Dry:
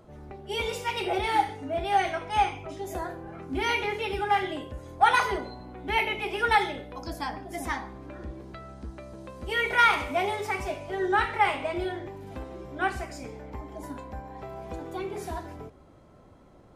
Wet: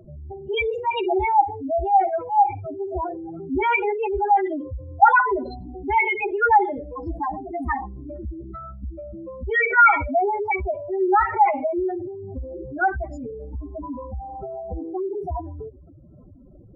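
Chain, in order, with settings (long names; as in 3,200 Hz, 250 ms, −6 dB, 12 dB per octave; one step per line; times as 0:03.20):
expanding power law on the bin magnitudes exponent 3.8
level +7.5 dB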